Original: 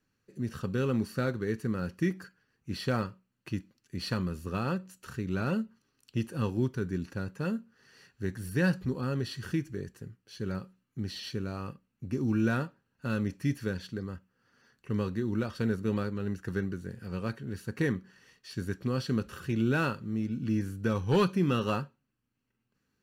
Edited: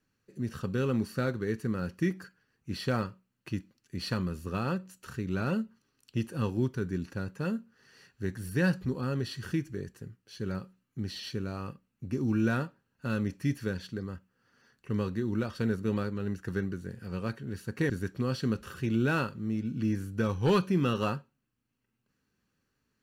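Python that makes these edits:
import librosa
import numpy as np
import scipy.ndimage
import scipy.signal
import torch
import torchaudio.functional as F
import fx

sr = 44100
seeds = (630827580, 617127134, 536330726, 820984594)

y = fx.edit(x, sr, fx.cut(start_s=17.9, length_s=0.66), tone=tone)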